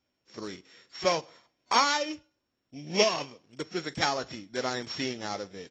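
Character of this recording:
a buzz of ramps at a fixed pitch in blocks of 8 samples
AAC

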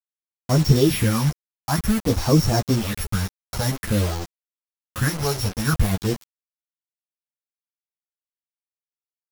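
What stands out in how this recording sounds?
a buzz of ramps at a fixed pitch in blocks of 8 samples
phaser sweep stages 4, 0.51 Hz, lowest notch 310–3,200 Hz
a quantiser's noise floor 6 bits, dither none
a shimmering, thickened sound

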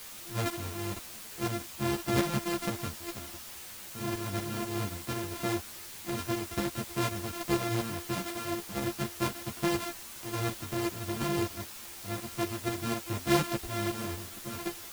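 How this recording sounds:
a buzz of ramps at a fixed pitch in blocks of 128 samples
tremolo saw up 4.1 Hz, depth 65%
a quantiser's noise floor 8 bits, dither triangular
a shimmering, thickened sound

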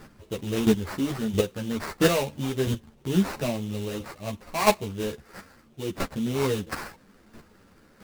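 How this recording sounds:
chopped level 1.5 Hz, depth 65%, duty 10%
aliases and images of a low sample rate 3,300 Hz, jitter 20%
a shimmering, thickened sound

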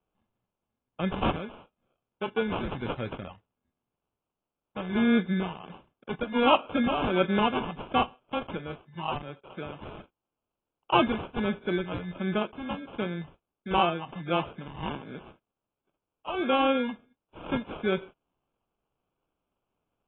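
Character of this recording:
phaser sweep stages 2, 1.4 Hz, lowest notch 360–3,300 Hz
aliases and images of a low sample rate 1,900 Hz, jitter 0%
AAC

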